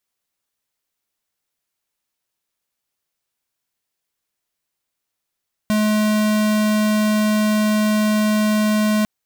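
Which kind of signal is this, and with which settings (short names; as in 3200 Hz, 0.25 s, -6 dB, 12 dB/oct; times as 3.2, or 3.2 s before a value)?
tone square 213 Hz -17 dBFS 3.35 s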